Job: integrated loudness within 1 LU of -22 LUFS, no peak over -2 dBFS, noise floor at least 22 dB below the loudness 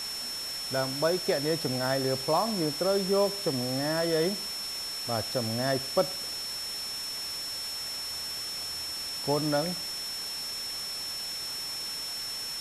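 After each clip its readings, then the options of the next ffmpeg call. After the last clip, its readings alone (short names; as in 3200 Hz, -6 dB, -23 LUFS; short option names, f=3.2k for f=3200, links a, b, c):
steady tone 5400 Hz; tone level -34 dBFS; noise floor -36 dBFS; noise floor target -52 dBFS; loudness -30.0 LUFS; peak -12.0 dBFS; loudness target -22.0 LUFS
-> -af "bandreject=f=5.4k:w=30"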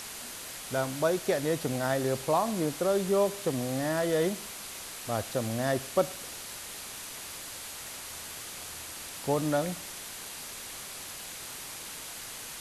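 steady tone none; noise floor -42 dBFS; noise floor target -54 dBFS
-> -af "afftdn=nr=12:nf=-42"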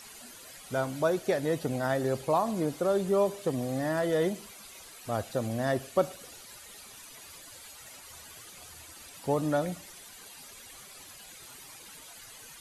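noise floor -49 dBFS; noise floor target -52 dBFS
-> -af "afftdn=nr=6:nf=-49"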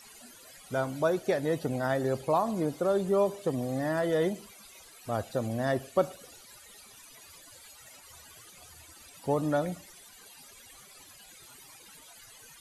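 noise floor -53 dBFS; loudness -30.0 LUFS; peak -12.5 dBFS; loudness target -22.0 LUFS
-> -af "volume=8dB"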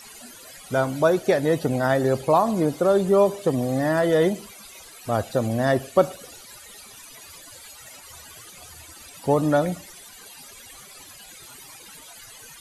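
loudness -22.0 LUFS; peak -4.5 dBFS; noise floor -45 dBFS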